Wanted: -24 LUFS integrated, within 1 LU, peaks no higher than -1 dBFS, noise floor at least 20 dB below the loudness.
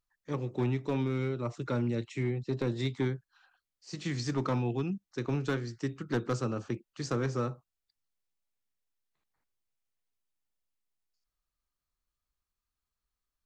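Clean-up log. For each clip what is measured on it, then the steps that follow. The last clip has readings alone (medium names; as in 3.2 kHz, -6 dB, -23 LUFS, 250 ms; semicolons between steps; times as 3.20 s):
clipped samples 0.6%; clipping level -23.0 dBFS; loudness -33.5 LUFS; peak level -23.0 dBFS; loudness target -24.0 LUFS
-> clip repair -23 dBFS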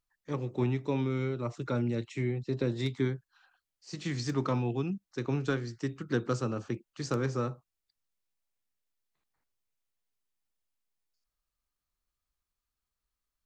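clipped samples 0.0%; loudness -33.0 LUFS; peak level -16.5 dBFS; loudness target -24.0 LUFS
-> trim +9 dB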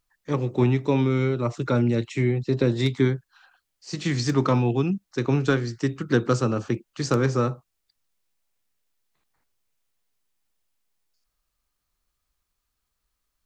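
loudness -24.0 LUFS; peak level -7.5 dBFS; noise floor -79 dBFS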